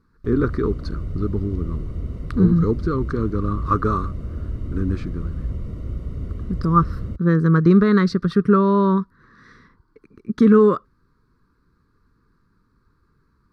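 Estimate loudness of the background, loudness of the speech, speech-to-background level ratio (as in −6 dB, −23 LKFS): −31.0 LKFS, −19.5 LKFS, 11.5 dB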